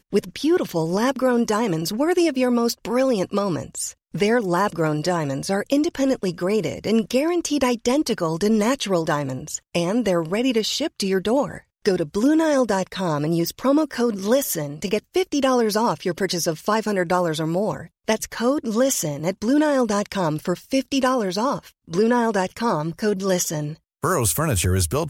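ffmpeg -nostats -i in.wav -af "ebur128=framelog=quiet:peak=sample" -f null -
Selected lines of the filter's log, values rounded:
Integrated loudness:
  I:         -21.9 LUFS
  Threshold: -31.9 LUFS
Loudness range:
  LRA:         1.2 LU
  Threshold: -41.9 LUFS
  LRA low:   -22.5 LUFS
  LRA high:  -21.3 LUFS
Sample peak:
  Peak:       -6.6 dBFS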